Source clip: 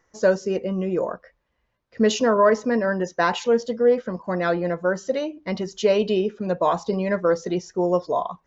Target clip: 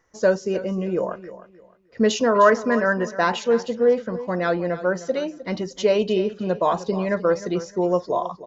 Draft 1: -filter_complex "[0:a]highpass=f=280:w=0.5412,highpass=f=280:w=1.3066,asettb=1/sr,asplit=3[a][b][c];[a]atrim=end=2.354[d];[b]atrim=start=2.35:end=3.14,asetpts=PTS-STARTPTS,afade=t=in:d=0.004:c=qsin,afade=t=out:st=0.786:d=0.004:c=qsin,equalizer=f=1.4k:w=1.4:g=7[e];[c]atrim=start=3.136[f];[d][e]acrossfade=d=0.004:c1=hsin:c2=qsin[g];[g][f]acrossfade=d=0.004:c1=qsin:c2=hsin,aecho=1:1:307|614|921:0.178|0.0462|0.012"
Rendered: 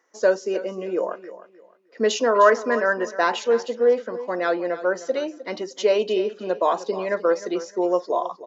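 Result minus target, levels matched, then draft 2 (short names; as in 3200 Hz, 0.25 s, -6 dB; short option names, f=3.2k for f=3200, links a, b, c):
250 Hz band -4.5 dB
-filter_complex "[0:a]asettb=1/sr,asplit=3[a][b][c];[a]atrim=end=2.354[d];[b]atrim=start=2.35:end=3.14,asetpts=PTS-STARTPTS,afade=t=in:d=0.004:c=qsin,afade=t=out:st=0.786:d=0.004:c=qsin,equalizer=f=1.4k:w=1.4:g=7[e];[c]atrim=start=3.136[f];[d][e]acrossfade=d=0.004:c1=hsin:c2=qsin[g];[g][f]acrossfade=d=0.004:c1=qsin:c2=hsin,aecho=1:1:307|614|921:0.178|0.0462|0.012"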